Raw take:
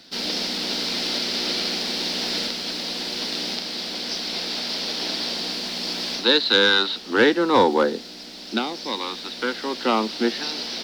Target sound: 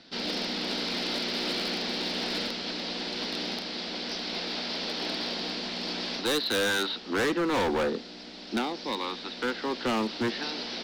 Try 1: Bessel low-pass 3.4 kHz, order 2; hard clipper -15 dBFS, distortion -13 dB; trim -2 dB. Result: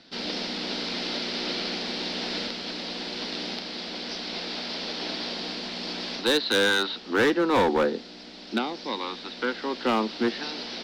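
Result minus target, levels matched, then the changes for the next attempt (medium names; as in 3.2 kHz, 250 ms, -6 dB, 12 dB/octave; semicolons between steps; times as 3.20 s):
hard clipper: distortion -7 dB
change: hard clipper -22 dBFS, distortion -6 dB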